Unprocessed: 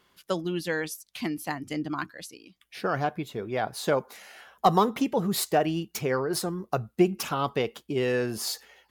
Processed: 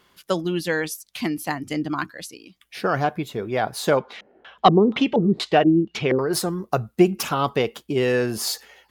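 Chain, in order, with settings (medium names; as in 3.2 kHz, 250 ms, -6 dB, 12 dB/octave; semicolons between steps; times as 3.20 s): 3.97–6.19 s: LFO low-pass square 2.1 Hz 340–3300 Hz; trim +5.5 dB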